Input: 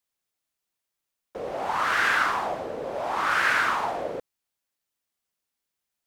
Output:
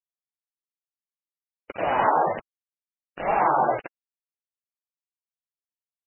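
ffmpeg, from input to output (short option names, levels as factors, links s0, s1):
-af "agate=range=0.0316:threshold=0.0631:ratio=16:detection=peak,flanger=delay=2.5:depth=5.2:regen=9:speed=0.6:shape=triangular,asetrate=24046,aresample=44100,atempo=1.83401,aresample=8000,acrusher=bits=5:mix=0:aa=0.000001,aresample=44100,acontrast=54" -ar 16000 -c:a libmp3lame -b:a 8k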